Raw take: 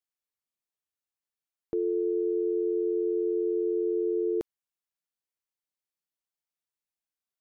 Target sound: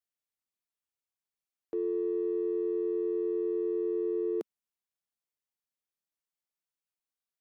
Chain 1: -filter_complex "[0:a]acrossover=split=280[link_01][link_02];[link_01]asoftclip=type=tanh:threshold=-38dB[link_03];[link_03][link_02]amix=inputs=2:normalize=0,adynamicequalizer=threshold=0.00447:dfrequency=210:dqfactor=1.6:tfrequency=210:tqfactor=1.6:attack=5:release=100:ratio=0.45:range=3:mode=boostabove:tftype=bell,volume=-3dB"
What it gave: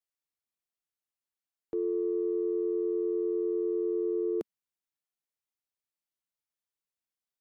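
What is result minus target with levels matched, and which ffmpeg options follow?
soft clipping: distortion −10 dB
-filter_complex "[0:a]acrossover=split=280[link_01][link_02];[link_01]asoftclip=type=tanh:threshold=-49dB[link_03];[link_03][link_02]amix=inputs=2:normalize=0,adynamicequalizer=threshold=0.00447:dfrequency=210:dqfactor=1.6:tfrequency=210:tqfactor=1.6:attack=5:release=100:ratio=0.45:range=3:mode=boostabove:tftype=bell,volume=-3dB"

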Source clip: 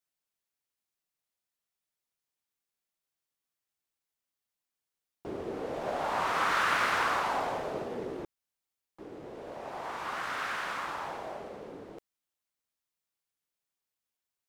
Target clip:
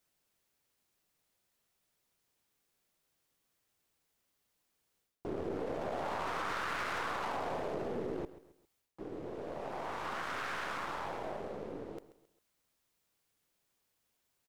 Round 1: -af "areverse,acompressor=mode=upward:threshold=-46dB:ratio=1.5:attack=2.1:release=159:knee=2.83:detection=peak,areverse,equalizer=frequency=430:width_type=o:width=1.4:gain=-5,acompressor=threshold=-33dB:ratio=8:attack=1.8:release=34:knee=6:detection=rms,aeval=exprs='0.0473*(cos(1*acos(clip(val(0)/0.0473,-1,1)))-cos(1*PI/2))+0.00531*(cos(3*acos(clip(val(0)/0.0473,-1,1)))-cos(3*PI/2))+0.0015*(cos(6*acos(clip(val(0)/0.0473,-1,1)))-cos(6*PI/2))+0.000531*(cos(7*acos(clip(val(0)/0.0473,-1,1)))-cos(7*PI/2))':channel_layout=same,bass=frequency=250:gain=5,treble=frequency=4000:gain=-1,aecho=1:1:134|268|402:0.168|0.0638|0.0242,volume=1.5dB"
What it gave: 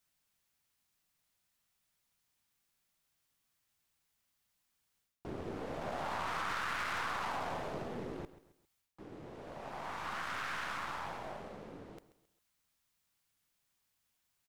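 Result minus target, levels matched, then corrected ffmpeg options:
500 Hz band −4.5 dB
-af "areverse,acompressor=mode=upward:threshold=-46dB:ratio=1.5:attack=2.1:release=159:knee=2.83:detection=peak,areverse,equalizer=frequency=430:width_type=o:width=1.4:gain=4,acompressor=threshold=-33dB:ratio=8:attack=1.8:release=34:knee=6:detection=rms,aeval=exprs='0.0473*(cos(1*acos(clip(val(0)/0.0473,-1,1)))-cos(1*PI/2))+0.00531*(cos(3*acos(clip(val(0)/0.0473,-1,1)))-cos(3*PI/2))+0.0015*(cos(6*acos(clip(val(0)/0.0473,-1,1)))-cos(6*PI/2))+0.000531*(cos(7*acos(clip(val(0)/0.0473,-1,1)))-cos(7*PI/2))':channel_layout=same,bass=frequency=250:gain=5,treble=frequency=4000:gain=-1,aecho=1:1:134|268|402:0.168|0.0638|0.0242,volume=1.5dB"

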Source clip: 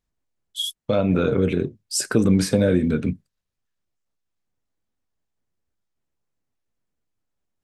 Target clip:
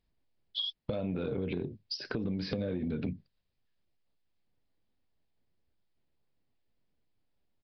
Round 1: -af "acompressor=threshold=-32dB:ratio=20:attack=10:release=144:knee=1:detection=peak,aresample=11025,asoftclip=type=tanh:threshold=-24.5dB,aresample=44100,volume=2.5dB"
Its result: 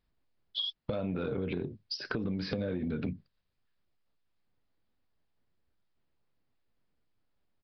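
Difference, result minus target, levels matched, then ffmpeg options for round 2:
1,000 Hz band +3.0 dB
-af "acompressor=threshold=-32dB:ratio=20:attack=10:release=144:knee=1:detection=peak,equalizer=frequency=1300:width_type=o:width=0.87:gain=-6,aresample=11025,asoftclip=type=tanh:threshold=-24.5dB,aresample=44100,volume=2.5dB"

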